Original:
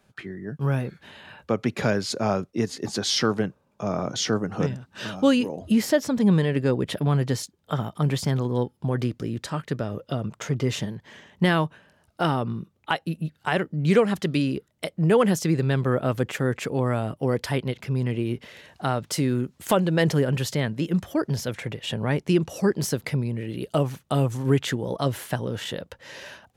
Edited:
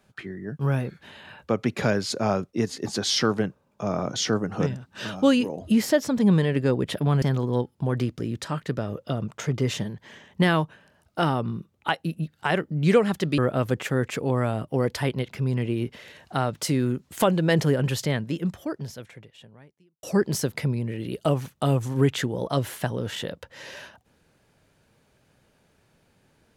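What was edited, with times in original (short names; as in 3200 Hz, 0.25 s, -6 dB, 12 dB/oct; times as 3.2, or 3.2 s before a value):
7.22–8.24 cut
14.4–15.87 cut
20.6–22.52 fade out quadratic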